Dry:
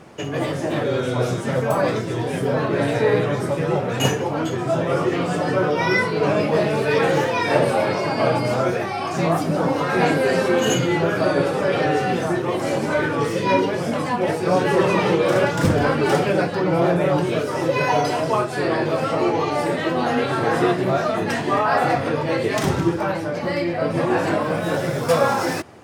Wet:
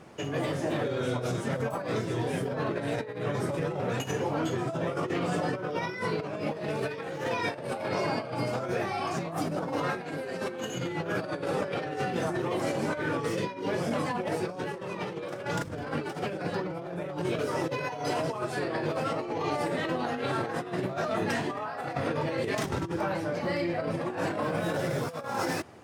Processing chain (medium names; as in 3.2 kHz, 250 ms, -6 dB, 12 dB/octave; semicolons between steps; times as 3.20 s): compressor with a negative ratio -22 dBFS, ratio -0.5; trim -8.5 dB